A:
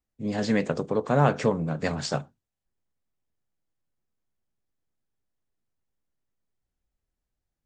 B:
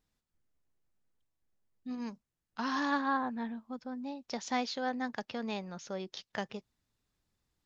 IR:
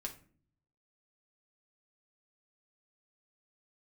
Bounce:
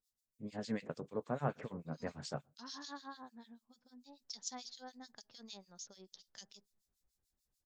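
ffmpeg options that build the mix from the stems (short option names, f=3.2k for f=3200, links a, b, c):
-filter_complex "[0:a]adelay=200,volume=-1.5dB,afade=t=in:st=3.89:d=0.27:silence=0.266073,asplit=2[a][b];[b]volume=-19.5dB[c];[1:a]aexciter=amount=10.1:drive=3:freq=3.7k,volume=-15.5dB,asplit=2[d][e];[e]volume=-19dB[f];[2:a]atrim=start_sample=2205[g];[c][f]amix=inputs=2:normalize=0[h];[h][g]afir=irnorm=-1:irlink=0[i];[a][d][i]amix=inputs=3:normalize=0,acrossover=split=2000[j][k];[j]aeval=exprs='val(0)*(1-1/2+1/2*cos(2*PI*6.8*n/s))':c=same[l];[k]aeval=exprs='val(0)*(1-1/2-1/2*cos(2*PI*6.8*n/s))':c=same[m];[l][m]amix=inputs=2:normalize=0"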